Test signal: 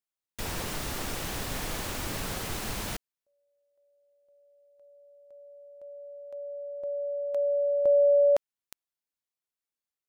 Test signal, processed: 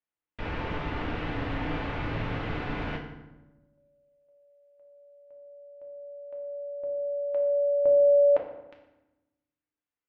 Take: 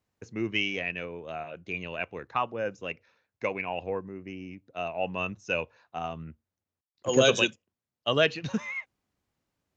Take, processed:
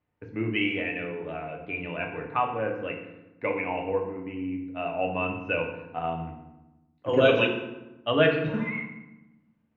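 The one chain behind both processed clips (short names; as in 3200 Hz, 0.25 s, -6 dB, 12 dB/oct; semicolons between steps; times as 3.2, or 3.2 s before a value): LPF 2800 Hz 24 dB/oct; FDN reverb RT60 1 s, low-frequency decay 1.5×, high-frequency decay 0.7×, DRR 0.5 dB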